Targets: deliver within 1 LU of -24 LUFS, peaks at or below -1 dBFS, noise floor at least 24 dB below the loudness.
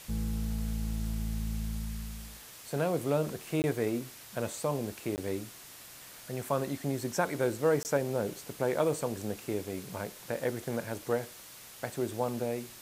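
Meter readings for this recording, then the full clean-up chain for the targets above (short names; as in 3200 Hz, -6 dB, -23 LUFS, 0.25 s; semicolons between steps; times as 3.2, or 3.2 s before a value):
dropouts 3; longest dropout 19 ms; noise floor -50 dBFS; noise floor target -58 dBFS; loudness -33.5 LUFS; peak -14.0 dBFS; loudness target -24.0 LUFS
-> interpolate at 3.62/5.16/7.83, 19 ms; noise print and reduce 8 dB; gain +9.5 dB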